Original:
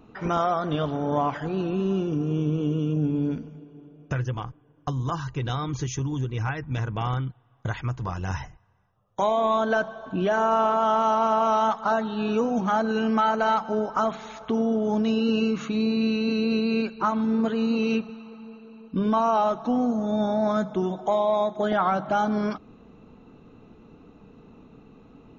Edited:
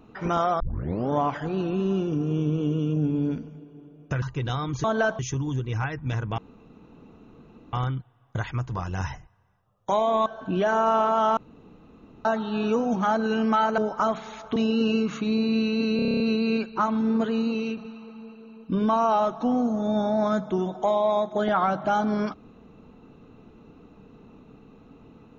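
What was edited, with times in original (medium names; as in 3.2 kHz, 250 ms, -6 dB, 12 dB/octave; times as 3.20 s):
0.60 s: tape start 0.50 s
4.22–5.22 s: delete
7.03 s: insert room tone 1.35 s
9.56–9.91 s: move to 5.84 s
11.02–11.90 s: room tone
13.43–13.75 s: delete
14.53–15.04 s: delete
16.44 s: stutter 0.03 s, 9 plays
17.56–18.01 s: fade out, to -7.5 dB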